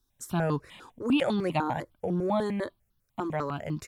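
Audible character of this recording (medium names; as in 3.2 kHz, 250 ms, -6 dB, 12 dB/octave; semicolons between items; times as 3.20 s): notches that jump at a steady rate 10 Hz 600–2300 Hz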